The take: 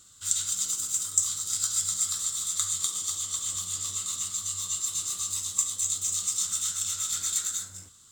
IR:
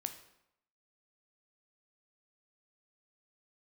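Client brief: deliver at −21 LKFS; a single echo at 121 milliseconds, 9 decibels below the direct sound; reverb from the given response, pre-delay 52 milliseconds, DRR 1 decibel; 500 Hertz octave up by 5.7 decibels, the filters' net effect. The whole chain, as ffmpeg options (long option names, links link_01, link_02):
-filter_complex "[0:a]equalizer=frequency=500:width_type=o:gain=7,aecho=1:1:121:0.355,asplit=2[link_01][link_02];[1:a]atrim=start_sample=2205,adelay=52[link_03];[link_02][link_03]afir=irnorm=-1:irlink=0,volume=0dB[link_04];[link_01][link_04]amix=inputs=2:normalize=0,volume=3dB"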